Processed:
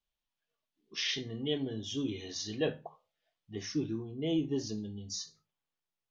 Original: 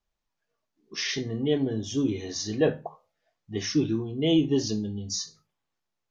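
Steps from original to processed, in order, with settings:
parametric band 3,200 Hz +10 dB 0.87 octaves, from 0:03.55 −3 dB, from 0:04.78 +4.5 dB
level −9 dB

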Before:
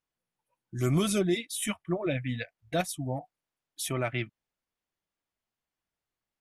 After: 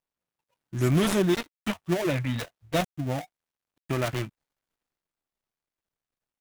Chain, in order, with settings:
gap after every zero crossing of 0.27 ms
transient designer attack +2 dB, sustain +6 dB
level +3 dB

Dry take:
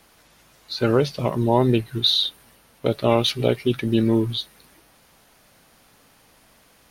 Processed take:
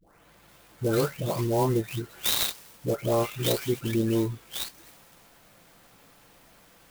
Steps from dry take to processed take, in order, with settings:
every frequency bin delayed by itself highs late, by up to 486 ms
in parallel at +2 dB: downward compressor, threshold −36 dBFS, peak gain reduction 19 dB
on the sum: converter with an unsteady clock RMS 0.044 ms
level −6 dB

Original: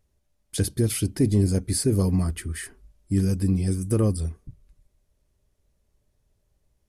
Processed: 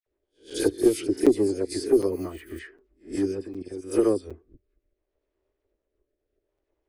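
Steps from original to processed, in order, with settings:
peak hold with a rise ahead of every peak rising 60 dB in 0.37 s
transient designer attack +8 dB, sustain −4 dB
low shelf with overshoot 240 Hz −13 dB, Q 3
in parallel at −8 dB: asymmetric clip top −16.5 dBFS
on the sum: low-pass that shuts in the quiet parts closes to 2,400 Hz, open at −10 dBFS
0:03.36–0:03.78: output level in coarse steps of 14 dB
rotating-speaker cabinet horn 8 Hz, later 0.7 Hz, at 0:02.79
0:02.09–0:02.59: bad sample-rate conversion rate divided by 4×, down filtered, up hold
all-pass dispersion lows, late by 65 ms, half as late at 2,300 Hz
regular buffer underruns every 0.76 s, samples 256, zero, from 0:00.50
level −5 dB

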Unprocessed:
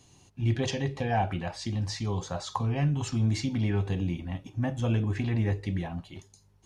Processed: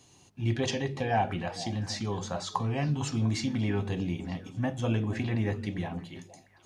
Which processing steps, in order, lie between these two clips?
low-shelf EQ 76 Hz −11.5 dB
hum removal 47.8 Hz, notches 5
on a send: echo through a band-pass that steps 233 ms, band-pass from 210 Hz, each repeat 1.4 octaves, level −10 dB
on the sum: level +1 dB

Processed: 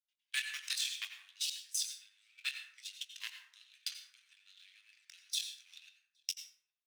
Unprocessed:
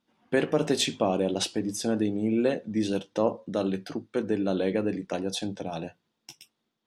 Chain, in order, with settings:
output level in coarse steps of 23 dB
double-tracking delay 22 ms −9.5 dB
leveller curve on the samples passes 2
inverse Chebyshev high-pass filter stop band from 590 Hz, stop band 70 dB
noise gate −51 dBFS, range −8 dB
slap from a distant wall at 140 metres, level −29 dB
dense smooth reverb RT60 0.69 s, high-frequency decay 0.5×, pre-delay 75 ms, DRR 6.5 dB
level +5.5 dB

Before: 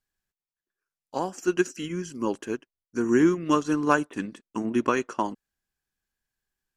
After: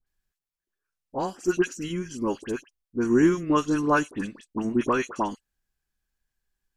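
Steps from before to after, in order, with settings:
low-shelf EQ 67 Hz +12 dB
all-pass dispersion highs, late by 68 ms, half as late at 1,700 Hz

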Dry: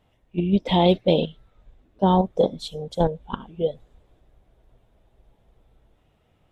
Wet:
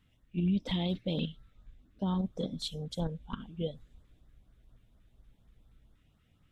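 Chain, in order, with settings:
flat-topped bell 580 Hz −9.5 dB
brickwall limiter −20 dBFS, peak gain reduction 10.5 dB
auto-filter notch saw up 4.2 Hz 560–3,000 Hz
level −2.5 dB

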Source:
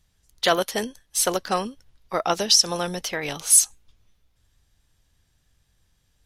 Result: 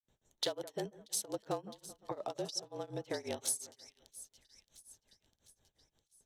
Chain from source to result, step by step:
adaptive Wiener filter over 9 samples
noise gate with hold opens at −58 dBFS
high-pass filter 430 Hz 6 dB per octave
flat-topped bell 1,800 Hz −11.5 dB
notch filter 770 Hz, Q 12
downward compressor 6 to 1, threshold −42 dBFS, peak gain reduction 28 dB
echo with a time of its own for lows and highs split 2,000 Hz, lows 177 ms, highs 655 ms, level −15.5 dB
granular cloud 209 ms, grains 5.6 per second, spray 28 ms, pitch spread up and down by 0 semitones
frequency shifter −46 Hz
level +8 dB

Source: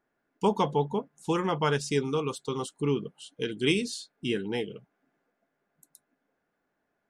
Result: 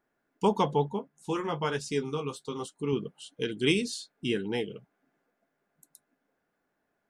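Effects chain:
0:00.89–0:02.93: flanger 1.1 Hz, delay 9.3 ms, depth 5.5 ms, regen −33%

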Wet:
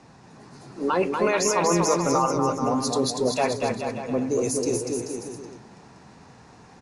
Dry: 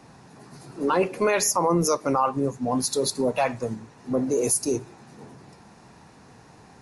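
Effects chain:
low-pass filter 8,600 Hz 24 dB per octave
bouncing-ball delay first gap 240 ms, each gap 0.8×, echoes 5
level −1 dB

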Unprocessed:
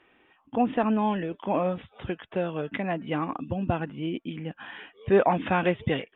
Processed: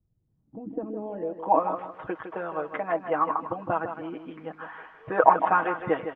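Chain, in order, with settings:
bass and treble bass −14 dB, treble +3 dB
comb filter 6.3 ms, depth 76%
harmonic and percussive parts rebalanced percussive +9 dB
in parallel at −10.5 dB: bit-depth reduction 6 bits, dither triangular
on the sum: low-pass filter sweep 110 Hz → 1,200 Hz, 0:00.18–0:01.68
on a send: repeating echo 158 ms, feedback 30%, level −9 dB
on the sum: level −9.5 dB

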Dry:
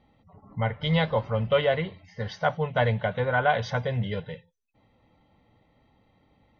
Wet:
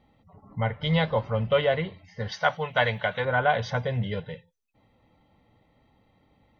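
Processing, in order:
0:02.32–0:03.25: tilt shelving filter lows −7 dB, about 680 Hz

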